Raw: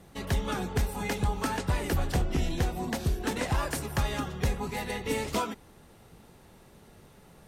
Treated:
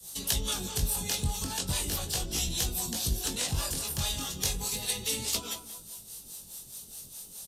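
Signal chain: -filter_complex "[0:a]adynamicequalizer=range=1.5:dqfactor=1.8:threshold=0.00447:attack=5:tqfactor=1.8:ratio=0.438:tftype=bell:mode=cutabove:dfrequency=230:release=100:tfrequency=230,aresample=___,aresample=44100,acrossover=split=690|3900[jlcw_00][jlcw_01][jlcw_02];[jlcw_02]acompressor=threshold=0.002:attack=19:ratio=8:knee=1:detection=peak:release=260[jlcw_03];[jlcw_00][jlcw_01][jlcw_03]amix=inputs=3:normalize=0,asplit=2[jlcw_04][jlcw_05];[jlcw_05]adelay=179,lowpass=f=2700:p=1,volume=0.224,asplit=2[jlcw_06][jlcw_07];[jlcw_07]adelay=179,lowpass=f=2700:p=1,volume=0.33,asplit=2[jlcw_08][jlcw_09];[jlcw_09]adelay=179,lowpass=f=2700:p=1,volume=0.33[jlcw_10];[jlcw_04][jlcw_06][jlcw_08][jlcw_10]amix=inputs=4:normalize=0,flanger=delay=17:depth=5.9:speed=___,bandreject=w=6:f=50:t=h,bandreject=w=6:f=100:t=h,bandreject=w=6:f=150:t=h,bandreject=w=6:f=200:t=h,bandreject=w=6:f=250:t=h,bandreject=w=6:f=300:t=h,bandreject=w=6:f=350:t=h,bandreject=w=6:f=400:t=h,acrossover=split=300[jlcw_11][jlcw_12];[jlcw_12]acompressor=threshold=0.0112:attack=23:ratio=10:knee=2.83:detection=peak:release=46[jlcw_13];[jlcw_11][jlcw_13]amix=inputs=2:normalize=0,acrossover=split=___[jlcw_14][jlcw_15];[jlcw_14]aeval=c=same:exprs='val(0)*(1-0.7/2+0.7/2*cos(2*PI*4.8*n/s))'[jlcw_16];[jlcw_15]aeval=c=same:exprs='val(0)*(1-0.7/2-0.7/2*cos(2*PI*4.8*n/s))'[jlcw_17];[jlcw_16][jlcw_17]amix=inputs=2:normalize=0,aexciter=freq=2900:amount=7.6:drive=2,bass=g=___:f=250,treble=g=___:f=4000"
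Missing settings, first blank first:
32000, 0.37, 450, 3, 11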